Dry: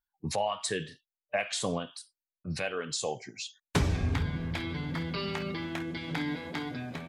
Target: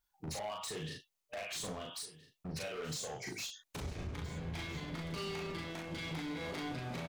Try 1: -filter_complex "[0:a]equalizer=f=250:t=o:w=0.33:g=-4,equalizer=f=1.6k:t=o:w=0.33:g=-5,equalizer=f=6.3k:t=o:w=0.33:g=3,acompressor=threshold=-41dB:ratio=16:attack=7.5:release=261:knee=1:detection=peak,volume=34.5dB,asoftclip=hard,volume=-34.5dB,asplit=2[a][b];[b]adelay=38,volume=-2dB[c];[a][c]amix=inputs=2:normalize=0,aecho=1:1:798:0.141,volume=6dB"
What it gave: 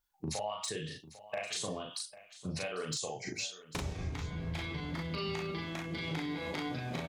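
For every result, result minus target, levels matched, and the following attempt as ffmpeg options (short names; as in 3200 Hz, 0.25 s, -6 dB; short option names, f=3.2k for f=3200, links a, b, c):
overloaded stage: distortion -16 dB; echo 0.523 s early
-filter_complex "[0:a]equalizer=f=250:t=o:w=0.33:g=-4,equalizer=f=1.6k:t=o:w=0.33:g=-5,equalizer=f=6.3k:t=o:w=0.33:g=3,acompressor=threshold=-41dB:ratio=16:attack=7.5:release=261:knee=1:detection=peak,volume=46dB,asoftclip=hard,volume=-46dB,asplit=2[a][b];[b]adelay=38,volume=-2dB[c];[a][c]amix=inputs=2:normalize=0,aecho=1:1:798:0.141,volume=6dB"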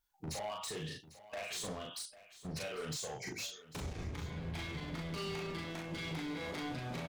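echo 0.523 s early
-filter_complex "[0:a]equalizer=f=250:t=o:w=0.33:g=-4,equalizer=f=1.6k:t=o:w=0.33:g=-5,equalizer=f=6.3k:t=o:w=0.33:g=3,acompressor=threshold=-41dB:ratio=16:attack=7.5:release=261:knee=1:detection=peak,volume=46dB,asoftclip=hard,volume=-46dB,asplit=2[a][b];[b]adelay=38,volume=-2dB[c];[a][c]amix=inputs=2:normalize=0,aecho=1:1:1321:0.141,volume=6dB"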